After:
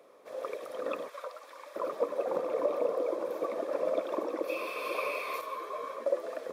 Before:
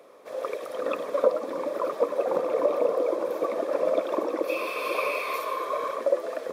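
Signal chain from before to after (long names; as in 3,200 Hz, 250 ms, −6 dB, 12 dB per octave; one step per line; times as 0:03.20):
0:01.08–0:01.76: high-pass filter 1,300 Hz 12 dB per octave
0:05.41–0:06.06: string-ensemble chorus
level −6 dB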